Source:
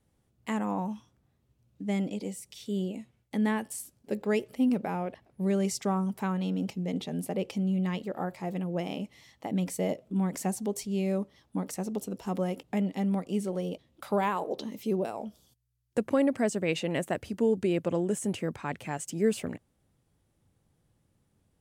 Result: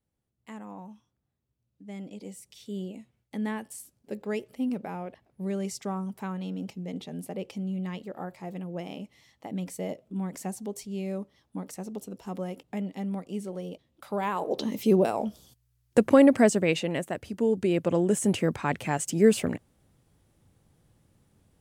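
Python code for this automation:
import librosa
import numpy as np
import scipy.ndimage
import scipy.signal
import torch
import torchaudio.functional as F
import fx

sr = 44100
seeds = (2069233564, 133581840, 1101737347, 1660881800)

y = fx.gain(x, sr, db=fx.line((1.9, -11.5), (2.37, -4.0), (14.13, -4.0), (14.7, 8.0), (16.42, 8.0), (17.11, -2.0), (18.3, 6.5)))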